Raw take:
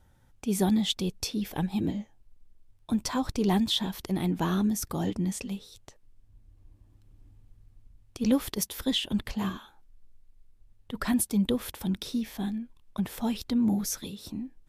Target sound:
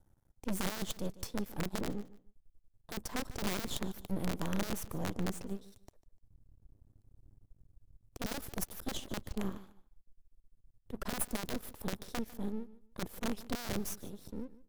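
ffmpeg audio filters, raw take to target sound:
-filter_complex "[0:a]aeval=exprs='0.266*(cos(1*acos(clip(val(0)/0.266,-1,1)))-cos(1*PI/2))+0.0841*(cos(2*acos(clip(val(0)/0.266,-1,1)))-cos(2*PI/2))+0.0422*(cos(6*acos(clip(val(0)/0.266,-1,1)))-cos(6*PI/2))+0.0188*(cos(8*acos(clip(val(0)/0.266,-1,1)))-cos(8*PI/2))':c=same,equalizer=f=2600:w=0.51:g=-13,acrossover=split=5600[s0][s1];[s0]aeval=exprs='(mod(11.9*val(0)+1,2)-1)/11.9':c=same[s2];[s2][s1]amix=inputs=2:normalize=0,acrossover=split=400|3000[s3][s4][s5];[s4]acompressor=threshold=0.02:ratio=3[s6];[s3][s6][s5]amix=inputs=3:normalize=0,aeval=exprs='max(val(0),0)':c=same,asplit=2[s7][s8];[s8]aecho=0:1:149|298:0.126|0.0277[s9];[s7][s9]amix=inputs=2:normalize=0,volume=0.75"

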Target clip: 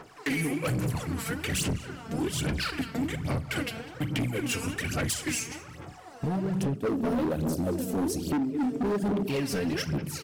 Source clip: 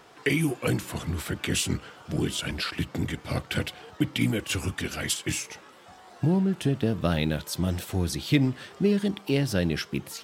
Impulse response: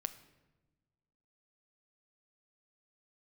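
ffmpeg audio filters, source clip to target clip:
-filter_complex "[0:a]equalizer=f=3500:t=o:w=0.42:g=-6.5,asplit=2[s0][s1];[s1]adelay=199,lowpass=f=2800:p=1,volume=0.224,asplit=2[s2][s3];[s3]adelay=199,lowpass=f=2800:p=1,volume=0.42,asplit=2[s4][s5];[s5]adelay=199,lowpass=f=2800:p=1,volume=0.42,asplit=2[s6][s7];[s7]adelay=199,lowpass=f=2800:p=1,volume=0.42[s8];[s0][s2][s4][s6][s8]amix=inputs=5:normalize=0[s9];[1:a]atrim=start_sample=2205[s10];[s9][s10]afir=irnorm=-1:irlink=0,aphaser=in_gain=1:out_gain=1:delay=4.5:decay=0.69:speed=1.2:type=sinusoidal,acompressor=threshold=0.0794:ratio=5,asettb=1/sr,asplit=3[s11][s12][s13];[s11]atrim=end=6.764[s14];[s12]atrim=start=6.76:end=9.28,asetpts=PTS-STARTPTS,afade=t=in:d=0.004:c=qsin,afade=t=out:st=2.516:d=0.004:c=qsin,equalizer=f=125:t=o:w=1:g=-11,equalizer=f=250:t=o:w=1:g=10,equalizer=f=500:t=o:w=1:g=7,equalizer=f=1000:t=o:w=1:g=-9,equalizer=f=2000:t=o:w=1:g=-9,equalizer=f=4000:t=o:w=1:g=-6[s15];[s13]atrim=start=9.276[s16];[s14][s15]acrossfade=d=0.004:c1=hsin:c2=qsin[s17];[s17][s16]acrossfade=d=0.004:c1=qsin:c2=hsin,asoftclip=type=hard:threshold=0.0596"

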